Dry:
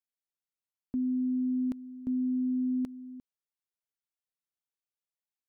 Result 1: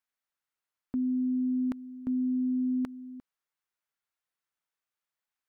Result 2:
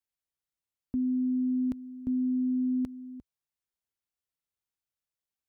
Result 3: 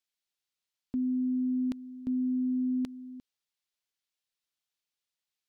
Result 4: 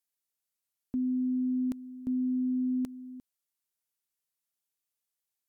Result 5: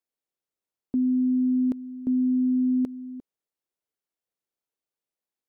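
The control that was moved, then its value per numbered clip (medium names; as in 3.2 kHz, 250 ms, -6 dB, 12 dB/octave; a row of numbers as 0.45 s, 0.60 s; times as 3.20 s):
peaking EQ, frequency: 1.4 kHz, 60 Hz, 3.8 kHz, 13 kHz, 410 Hz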